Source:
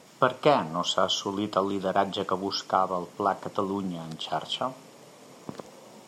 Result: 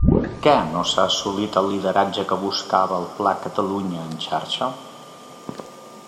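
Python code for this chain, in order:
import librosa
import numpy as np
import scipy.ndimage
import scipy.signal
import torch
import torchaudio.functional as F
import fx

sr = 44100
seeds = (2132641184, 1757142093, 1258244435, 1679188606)

y = fx.tape_start_head(x, sr, length_s=0.48)
y = y + 10.0 ** (-51.0 / 20.0) * np.sin(2.0 * np.pi * 1200.0 * np.arange(len(y)) / sr)
y = fx.rev_double_slope(y, sr, seeds[0], early_s=0.43, late_s=4.0, knee_db=-16, drr_db=8.5)
y = y * 10.0 ** (6.0 / 20.0)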